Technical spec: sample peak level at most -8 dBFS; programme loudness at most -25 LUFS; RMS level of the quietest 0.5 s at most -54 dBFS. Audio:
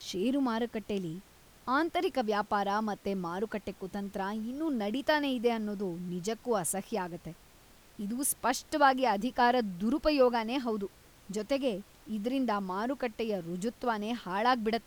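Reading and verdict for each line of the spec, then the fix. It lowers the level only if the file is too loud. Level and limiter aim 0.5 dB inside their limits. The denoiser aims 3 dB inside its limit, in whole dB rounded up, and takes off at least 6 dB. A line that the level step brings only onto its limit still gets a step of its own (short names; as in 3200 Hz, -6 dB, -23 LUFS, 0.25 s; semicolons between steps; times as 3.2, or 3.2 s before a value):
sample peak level -12.5 dBFS: OK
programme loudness -31.5 LUFS: OK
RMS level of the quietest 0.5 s -58 dBFS: OK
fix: none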